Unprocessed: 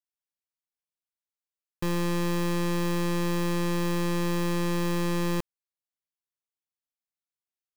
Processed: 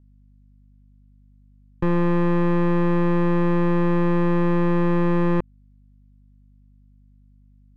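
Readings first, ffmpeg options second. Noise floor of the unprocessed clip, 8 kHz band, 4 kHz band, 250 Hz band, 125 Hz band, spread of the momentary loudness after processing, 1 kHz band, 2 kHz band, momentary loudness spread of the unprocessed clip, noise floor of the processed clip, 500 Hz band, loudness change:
below −85 dBFS, below −20 dB, can't be measured, +8.0 dB, +8.0 dB, 3 LU, +7.0 dB, +3.0 dB, 3 LU, −53 dBFS, +8.0 dB, +7.5 dB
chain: -filter_complex "[0:a]aeval=exprs='val(0)+0.001*(sin(2*PI*50*n/s)+sin(2*PI*2*50*n/s)/2+sin(2*PI*3*50*n/s)/3+sin(2*PI*4*50*n/s)/4+sin(2*PI*5*50*n/s)/5)':channel_layout=same,acrossover=split=2500[link_01][link_02];[link_02]acompressor=threshold=-55dB:ratio=4:attack=1:release=60[link_03];[link_01][link_03]amix=inputs=2:normalize=0,aemphasis=mode=reproduction:type=75kf,volume=8dB"

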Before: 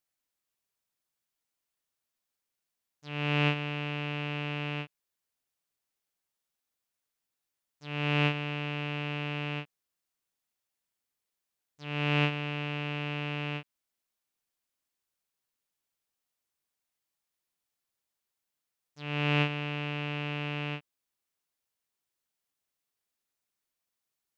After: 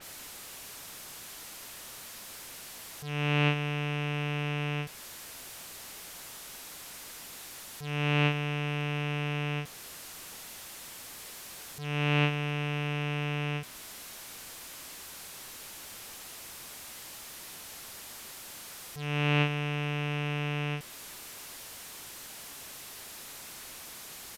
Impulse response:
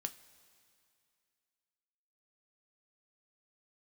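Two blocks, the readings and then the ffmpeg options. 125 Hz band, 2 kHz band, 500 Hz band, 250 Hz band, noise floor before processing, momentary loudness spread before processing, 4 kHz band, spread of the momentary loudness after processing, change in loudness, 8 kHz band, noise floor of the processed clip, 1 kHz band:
+3.0 dB, +1.0 dB, +1.5 dB, +1.5 dB, below −85 dBFS, 12 LU, +1.5 dB, 15 LU, −3.0 dB, can't be measured, −46 dBFS, +1.5 dB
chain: -af "aeval=exprs='val(0)+0.5*0.0158*sgn(val(0))':channel_layout=same,aresample=32000,aresample=44100,adynamicequalizer=threshold=0.00501:dfrequency=4200:dqfactor=0.7:tfrequency=4200:tqfactor=0.7:attack=5:release=100:ratio=0.375:range=2:mode=cutabove:tftype=highshelf"

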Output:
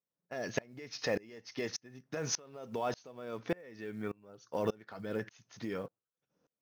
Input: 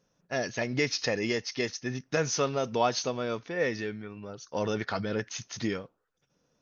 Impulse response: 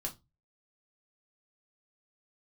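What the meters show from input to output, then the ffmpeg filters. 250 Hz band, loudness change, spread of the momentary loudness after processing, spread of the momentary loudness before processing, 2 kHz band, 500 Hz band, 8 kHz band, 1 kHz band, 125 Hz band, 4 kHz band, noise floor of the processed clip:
−8.0 dB, −8.5 dB, 9 LU, 10 LU, −10.5 dB, −7.5 dB, can't be measured, −9.5 dB, −9.5 dB, −10.0 dB, below −85 dBFS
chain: -filter_complex "[0:a]agate=range=-7dB:threshold=-57dB:ratio=16:detection=peak,highpass=frequency=170:poles=1,highshelf=frequency=2500:gain=-10,alimiter=limit=-22dB:level=0:latency=1:release=28,acompressor=threshold=-33dB:ratio=8,acrusher=bits=8:mode=log:mix=0:aa=0.000001,asplit=2[link_01][link_02];[1:a]atrim=start_sample=2205[link_03];[link_02][link_03]afir=irnorm=-1:irlink=0,volume=-18dB[link_04];[link_01][link_04]amix=inputs=2:normalize=0,aeval=exprs='val(0)*pow(10,-29*if(lt(mod(-1.7*n/s,1),2*abs(-1.7)/1000),1-mod(-1.7*n/s,1)/(2*abs(-1.7)/1000),(mod(-1.7*n/s,1)-2*abs(-1.7)/1000)/(1-2*abs(-1.7)/1000))/20)':channel_layout=same,volume=7.5dB"

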